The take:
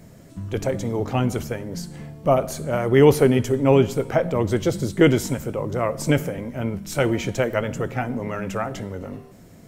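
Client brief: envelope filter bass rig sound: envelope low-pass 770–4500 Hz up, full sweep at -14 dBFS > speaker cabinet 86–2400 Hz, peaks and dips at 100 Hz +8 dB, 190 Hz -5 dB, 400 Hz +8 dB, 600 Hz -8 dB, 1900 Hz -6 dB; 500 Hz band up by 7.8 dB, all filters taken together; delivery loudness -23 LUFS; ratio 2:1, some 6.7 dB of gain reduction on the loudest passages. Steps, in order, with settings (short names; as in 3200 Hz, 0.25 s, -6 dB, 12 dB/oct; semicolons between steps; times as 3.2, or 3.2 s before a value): bell 500 Hz +5.5 dB; compressor 2:1, threshold -18 dBFS; envelope low-pass 770–4500 Hz up, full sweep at -14 dBFS; speaker cabinet 86–2400 Hz, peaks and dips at 100 Hz +8 dB, 190 Hz -5 dB, 400 Hz +8 dB, 600 Hz -8 dB, 1900 Hz -6 dB; gain -2.5 dB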